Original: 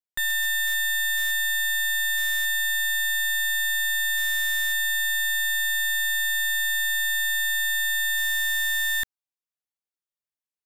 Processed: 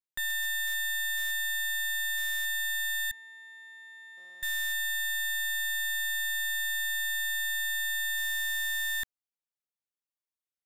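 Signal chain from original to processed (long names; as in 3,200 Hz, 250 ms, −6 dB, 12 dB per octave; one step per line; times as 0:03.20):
0:03.11–0:04.43: resonant band-pass 510 Hz, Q 1.9
level −6.5 dB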